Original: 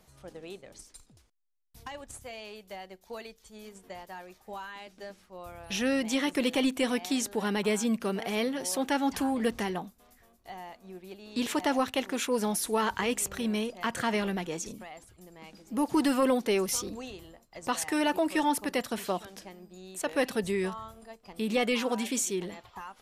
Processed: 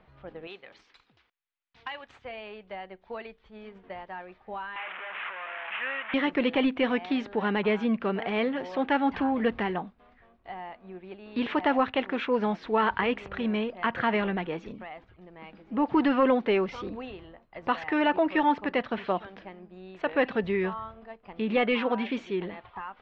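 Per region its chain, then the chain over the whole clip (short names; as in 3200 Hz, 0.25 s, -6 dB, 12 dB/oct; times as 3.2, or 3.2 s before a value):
0.47–2.25 tilt +4 dB/oct + notch 620 Hz, Q 9.4
4.76–6.14 delta modulation 16 kbps, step -28 dBFS + HPF 1200 Hz
whole clip: Bessel low-pass 1900 Hz, order 6; tilt shelf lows -3.5 dB; gain +5 dB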